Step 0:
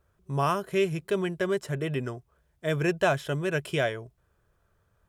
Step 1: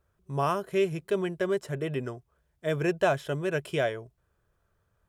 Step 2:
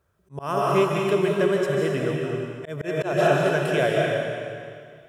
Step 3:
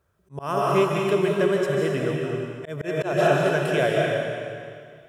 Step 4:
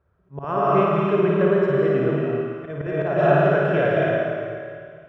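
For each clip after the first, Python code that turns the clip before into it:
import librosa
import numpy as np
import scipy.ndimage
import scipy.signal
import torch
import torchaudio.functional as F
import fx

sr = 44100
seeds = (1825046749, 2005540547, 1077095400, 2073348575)

y1 = fx.dynamic_eq(x, sr, hz=520.0, q=0.71, threshold_db=-35.0, ratio=4.0, max_db=4)
y1 = F.gain(torch.from_numpy(y1), -3.5).numpy()
y2 = scipy.signal.sosfilt(scipy.signal.butter(2, 72.0, 'highpass', fs=sr, output='sos'), y1)
y2 = fx.rev_freeverb(y2, sr, rt60_s=2.2, hf_ratio=0.95, predelay_ms=110, drr_db=-2.0)
y2 = fx.auto_swell(y2, sr, attack_ms=185.0)
y2 = F.gain(torch.from_numpy(y2), 4.0).numpy()
y3 = y2
y4 = scipy.signal.sosfilt(scipy.signal.butter(2, 1900.0, 'lowpass', fs=sr, output='sos'), y3)
y4 = fx.low_shelf(y4, sr, hz=73.0, db=6.0)
y4 = fx.room_flutter(y4, sr, wall_m=9.5, rt60_s=0.91)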